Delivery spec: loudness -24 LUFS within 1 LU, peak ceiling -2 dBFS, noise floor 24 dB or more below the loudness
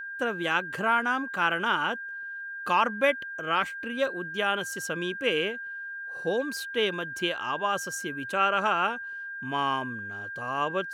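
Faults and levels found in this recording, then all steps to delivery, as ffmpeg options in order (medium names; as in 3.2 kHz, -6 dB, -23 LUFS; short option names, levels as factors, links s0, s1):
steady tone 1.6 kHz; tone level -35 dBFS; loudness -28.5 LUFS; peak level -11.0 dBFS; loudness target -24.0 LUFS
-> -af "bandreject=f=1600:w=30"
-af "volume=1.68"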